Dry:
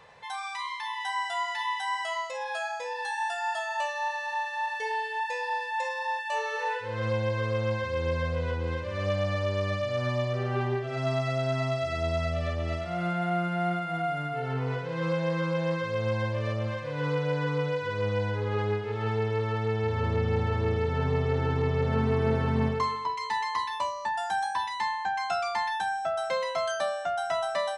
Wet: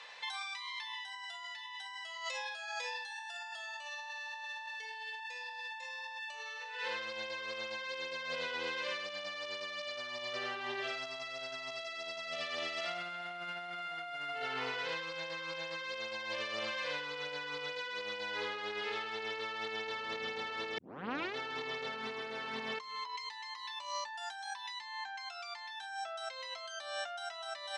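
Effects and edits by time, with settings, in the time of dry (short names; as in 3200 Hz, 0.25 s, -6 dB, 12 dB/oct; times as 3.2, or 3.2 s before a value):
20.78 tape start 0.58 s
whole clip: Chebyshev band-pass 220–3900 Hz, order 2; differentiator; negative-ratio compressor -54 dBFS, ratio -1; gain +12 dB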